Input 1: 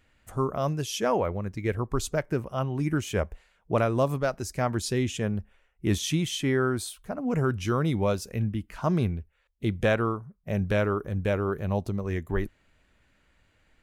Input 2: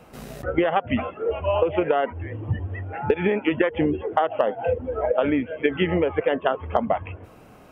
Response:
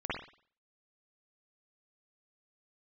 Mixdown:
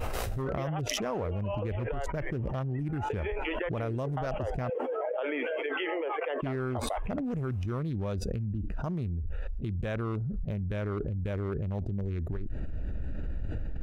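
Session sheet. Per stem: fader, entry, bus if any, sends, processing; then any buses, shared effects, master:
-3.0 dB, 0.00 s, muted 4.70–6.42 s, no send, local Wiener filter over 41 samples; bass shelf 98 Hz +11.5 dB; compression 6:1, threshold -32 dBFS, peak gain reduction 17 dB
-14.5 dB, 0.00 s, no send, inverse Chebyshev high-pass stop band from 190 Hz, stop band 40 dB; expander -55 dBFS; auto duck -7 dB, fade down 0.40 s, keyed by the first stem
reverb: none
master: level flattener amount 100%

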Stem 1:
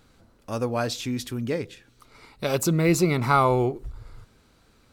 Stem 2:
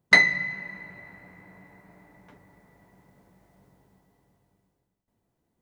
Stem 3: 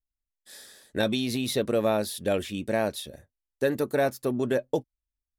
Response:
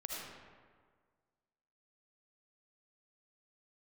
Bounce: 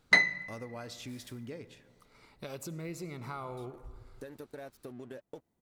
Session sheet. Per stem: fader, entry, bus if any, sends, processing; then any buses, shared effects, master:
-10.5 dB, 0.00 s, bus A, send -21.5 dB, none
-3.0 dB, 0.00 s, no bus, no send, auto duck -14 dB, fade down 0.60 s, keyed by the first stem
-4.5 dB, 0.60 s, muted 1.55–3.57 s, bus A, no send, compression 2.5:1, threshold -40 dBFS, peak gain reduction 13.5 dB; crossover distortion -52 dBFS
bus A: 0.0 dB, compression 5:1, threshold -41 dBFS, peak gain reduction 14 dB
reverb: on, RT60 1.7 s, pre-delay 35 ms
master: none

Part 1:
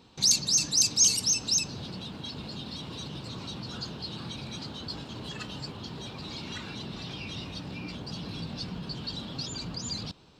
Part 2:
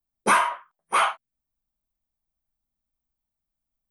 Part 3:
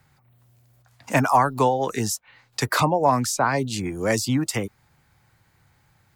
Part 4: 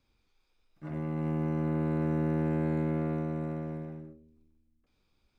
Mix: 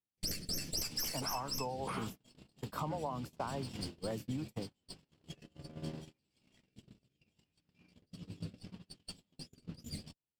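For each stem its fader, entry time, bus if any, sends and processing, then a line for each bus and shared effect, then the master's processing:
+1.5 dB, 0.00 s, no send, comb filter that takes the minimum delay 0.39 ms; flange 0.23 Hz, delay 9.7 ms, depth 6.3 ms, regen -22%; rotary cabinet horn 0.75 Hz
-9.5 dB, 0.95 s, no send, compression 6:1, threshold -29 dBFS, peak gain reduction 13.5 dB
-13.5 dB, 0.00 s, no send, high-order bell 4 kHz -14 dB 2.8 oct; band-stop 360 Hz, Q 12
-8.0 dB, 2.05 s, no send, compressor with a negative ratio -38 dBFS, ratio -0.5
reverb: none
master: gate -38 dBFS, range -39 dB; compression 12:1, threshold -34 dBFS, peak gain reduction 12 dB

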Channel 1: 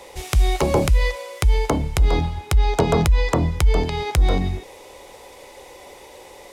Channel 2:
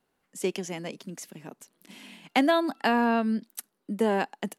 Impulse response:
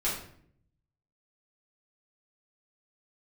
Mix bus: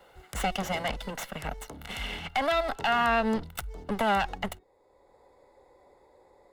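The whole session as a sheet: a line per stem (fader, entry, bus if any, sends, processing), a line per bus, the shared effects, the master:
-15.0 dB, 0.00 s, no send, local Wiener filter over 15 samples; treble shelf 6.3 kHz +8.5 dB; auto duck -9 dB, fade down 0.50 s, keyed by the second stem
0.0 dB, 0.00 s, no send, comb filter that takes the minimum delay 1.4 ms; high-order bell 1.7 kHz +8.5 dB 2.7 oct; three bands compressed up and down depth 40%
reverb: none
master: band-stop 2.4 kHz, Q 12; peak limiter -17 dBFS, peak gain reduction 8 dB

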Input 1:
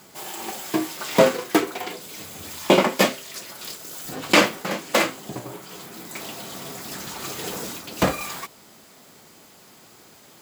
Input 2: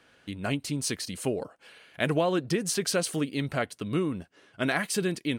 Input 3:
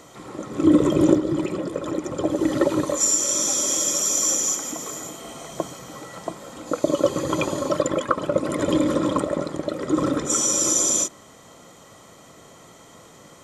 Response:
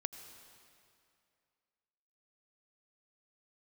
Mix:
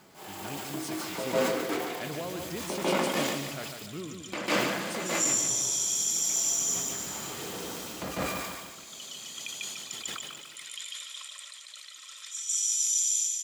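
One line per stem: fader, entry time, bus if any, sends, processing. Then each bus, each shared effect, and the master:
-5.0 dB, 0.00 s, muted 3.72–4.32 s, bus A, no send, echo send -4.5 dB, transient shaper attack -8 dB, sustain +2 dB
-12.5 dB, 0.00 s, no bus, no send, echo send -7 dB, none
-1.5 dB, 2.05 s, bus A, no send, echo send -5 dB, Chebyshev high-pass 2.8 kHz, order 3
bus A: 0.0 dB, treble shelf 4.4 kHz -8 dB; compression 4:1, threshold -37 dBFS, peak gain reduction 15.5 dB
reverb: none
echo: feedback delay 146 ms, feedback 45%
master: decay stretcher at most 35 dB/s

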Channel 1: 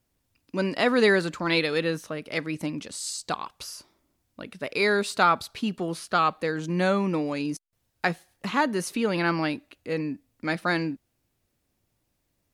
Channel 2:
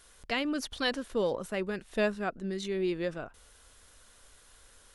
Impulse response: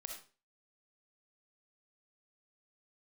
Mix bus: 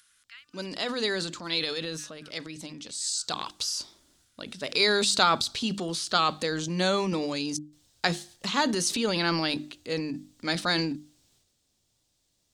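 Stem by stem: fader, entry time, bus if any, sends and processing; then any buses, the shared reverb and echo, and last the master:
2.94 s -11 dB -> 3.52 s -3 dB, 0.00 s, no send, high-order bell 5.2 kHz +12 dB; hum notches 50/100/150/200/250/300/350 Hz; transient shaper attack +1 dB, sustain +8 dB
-11.0 dB, 0.00 s, no send, Chebyshev high-pass 1.3 kHz, order 4; upward compressor, threshold -45 dBFS; auto duck -7 dB, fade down 0.25 s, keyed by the first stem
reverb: none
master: none

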